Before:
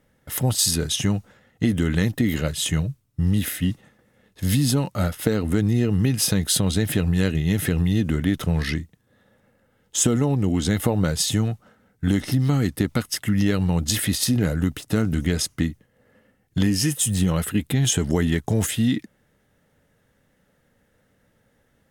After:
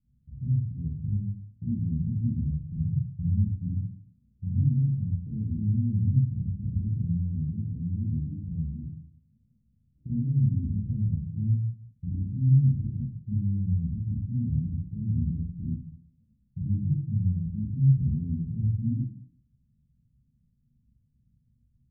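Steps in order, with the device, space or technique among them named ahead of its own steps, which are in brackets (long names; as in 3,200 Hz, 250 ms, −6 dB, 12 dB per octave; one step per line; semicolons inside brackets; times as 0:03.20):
0:07.30–0:08.79: bass and treble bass −6 dB, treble +7 dB
club heard from the street (brickwall limiter −15.5 dBFS, peak gain reduction 10.5 dB; low-pass filter 170 Hz 24 dB per octave; convolution reverb RT60 0.55 s, pre-delay 31 ms, DRR −7 dB)
level −7.5 dB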